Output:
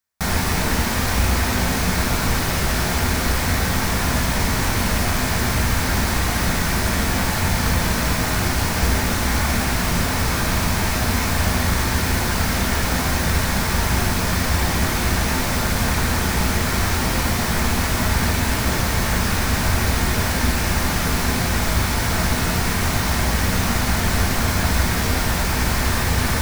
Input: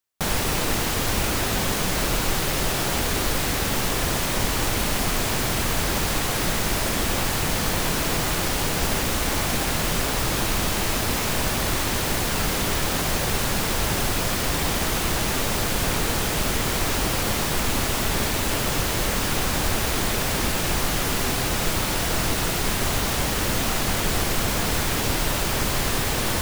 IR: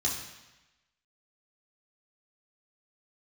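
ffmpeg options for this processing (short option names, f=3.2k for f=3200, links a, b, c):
-filter_complex "[0:a]asplit=2[a][b];[1:a]atrim=start_sample=2205,asetrate=38367,aresample=44100,lowpass=2.7k[c];[b][c]afir=irnorm=-1:irlink=0,volume=-5.5dB[d];[a][d]amix=inputs=2:normalize=0"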